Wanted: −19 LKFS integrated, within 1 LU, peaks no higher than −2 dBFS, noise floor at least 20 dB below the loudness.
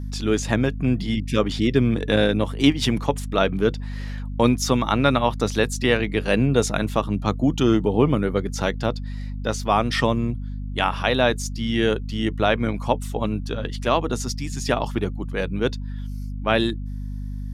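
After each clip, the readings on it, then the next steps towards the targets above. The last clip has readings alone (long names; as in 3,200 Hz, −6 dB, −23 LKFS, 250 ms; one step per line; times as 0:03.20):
mains hum 50 Hz; hum harmonics up to 250 Hz; level of the hum −27 dBFS; integrated loudness −22.5 LKFS; sample peak −4.0 dBFS; target loudness −19.0 LKFS
→ hum removal 50 Hz, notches 5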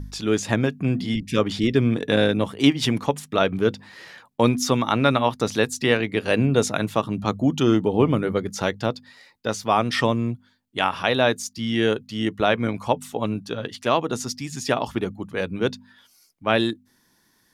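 mains hum none found; integrated loudness −23.0 LKFS; sample peak −4.5 dBFS; target loudness −19.0 LKFS
→ level +4 dB
brickwall limiter −2 dBFS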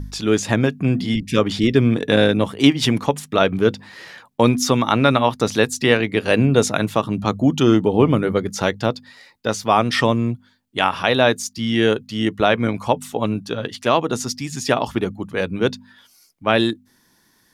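integrated loudness −19.0 LKFS; sample peak −2.0 dBFS; background noise floor −59 dBFS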